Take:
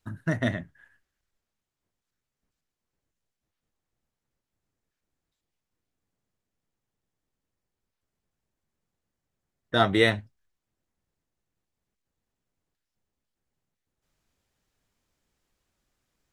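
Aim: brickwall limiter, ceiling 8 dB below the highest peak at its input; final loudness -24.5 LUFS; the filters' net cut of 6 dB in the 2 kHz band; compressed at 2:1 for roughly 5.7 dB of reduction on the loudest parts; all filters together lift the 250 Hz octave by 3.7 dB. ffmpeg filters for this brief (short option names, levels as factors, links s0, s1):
-af "equalizer=f=250:t=o:g=5,equalizer=f=2000:t=o:g=-7,acompressor=threshold=0.0501:ratio=2,volume=3.16,alimiter=limit=0.282:level=0:latency=1"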